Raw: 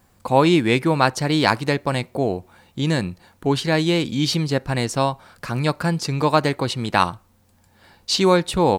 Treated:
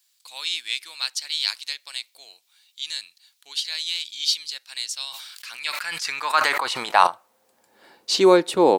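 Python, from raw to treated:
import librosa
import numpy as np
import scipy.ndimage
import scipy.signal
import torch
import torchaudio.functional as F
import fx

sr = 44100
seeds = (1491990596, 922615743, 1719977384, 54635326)

y = fx.filter_sweep_highpass(x, sr, from_hz=3800.0, to_hz=350.0, start_s=5.21, end_s=7.82, q=1.7)
y = fx.sustainer(y, sr, db_per_s=36.0, at=(5.04, 7.07))
y = y * librosa.db_to_amplitude(-1.5)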